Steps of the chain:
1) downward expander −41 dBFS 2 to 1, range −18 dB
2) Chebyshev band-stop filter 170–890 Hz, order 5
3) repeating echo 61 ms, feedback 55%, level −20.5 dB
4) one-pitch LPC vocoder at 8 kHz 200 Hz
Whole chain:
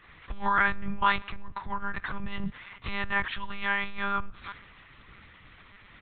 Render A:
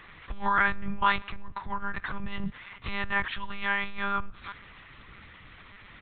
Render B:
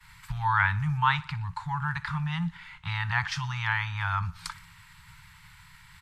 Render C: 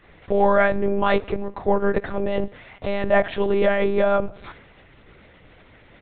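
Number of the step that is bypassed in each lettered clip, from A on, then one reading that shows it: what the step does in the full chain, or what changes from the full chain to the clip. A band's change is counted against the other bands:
1, change in momentary loudness spread +7 LU
4, 125 Hz band +13.5 dB
2, 500 Hz band +19.5 dB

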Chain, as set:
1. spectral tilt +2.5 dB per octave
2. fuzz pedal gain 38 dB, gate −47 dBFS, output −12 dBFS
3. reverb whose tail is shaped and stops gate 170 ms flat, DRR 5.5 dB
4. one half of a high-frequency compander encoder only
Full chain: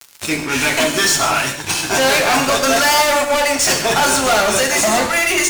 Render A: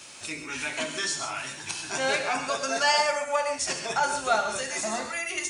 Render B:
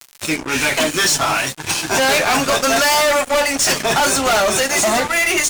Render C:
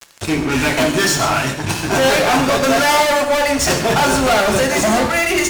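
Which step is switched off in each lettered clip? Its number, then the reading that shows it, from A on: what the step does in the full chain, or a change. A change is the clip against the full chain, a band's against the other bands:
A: 2, distortion level −2 dB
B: 3, change in crest factor −4.5 dB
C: 1, 125 Hz band +7.5 dB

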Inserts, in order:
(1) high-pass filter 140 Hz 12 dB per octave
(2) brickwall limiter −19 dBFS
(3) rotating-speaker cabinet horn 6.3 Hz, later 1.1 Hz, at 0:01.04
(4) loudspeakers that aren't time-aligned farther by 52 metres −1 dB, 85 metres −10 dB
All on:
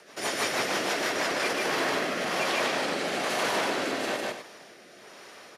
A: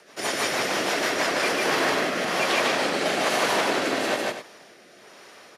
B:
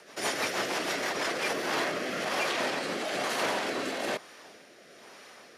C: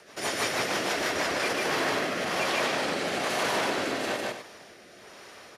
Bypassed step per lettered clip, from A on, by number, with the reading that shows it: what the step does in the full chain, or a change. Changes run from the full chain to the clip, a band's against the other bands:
2, average gain reduction 3.0 dB
4, change in momentary loudness spread +2 LU
1, 125 Hz band +2.5 dB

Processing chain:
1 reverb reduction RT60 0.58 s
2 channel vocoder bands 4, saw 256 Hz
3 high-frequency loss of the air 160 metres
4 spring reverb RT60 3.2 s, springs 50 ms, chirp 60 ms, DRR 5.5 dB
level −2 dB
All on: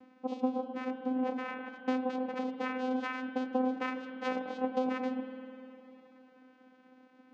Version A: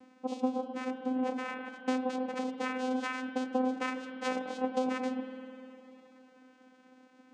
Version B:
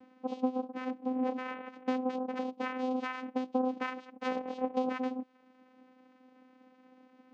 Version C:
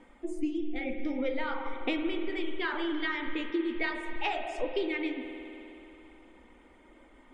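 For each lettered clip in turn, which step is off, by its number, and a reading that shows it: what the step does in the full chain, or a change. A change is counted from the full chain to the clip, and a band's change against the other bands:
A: 3, 4 kHz band +3.0 dB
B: 4, 2 kHz band −1.5 dB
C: 2, 4 kHz band +9.5 dB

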